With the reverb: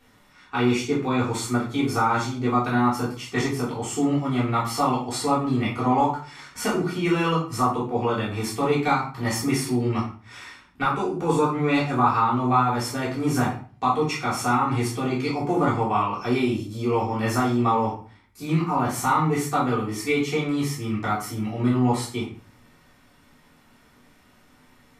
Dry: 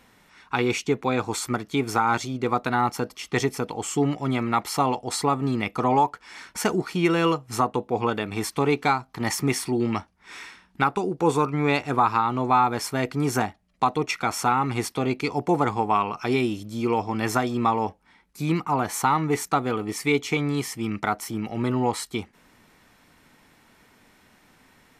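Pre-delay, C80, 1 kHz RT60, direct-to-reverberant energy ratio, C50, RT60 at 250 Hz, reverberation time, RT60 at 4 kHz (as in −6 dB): 3 ms, 11.0 dB, 0.40 s, −7.5 dB, 5.5 dB, 0.55 s, 0.40 s, 0.35 s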